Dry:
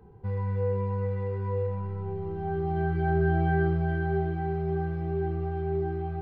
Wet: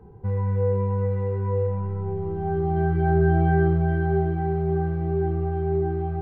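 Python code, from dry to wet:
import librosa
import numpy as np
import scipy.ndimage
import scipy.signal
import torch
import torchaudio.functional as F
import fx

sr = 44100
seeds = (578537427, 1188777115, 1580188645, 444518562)

y = fx.high_shelf(x, sr, hz=2200.0, db=-11.5)
y = F.gain(torch.from_numpy(y), 5.5).numpy()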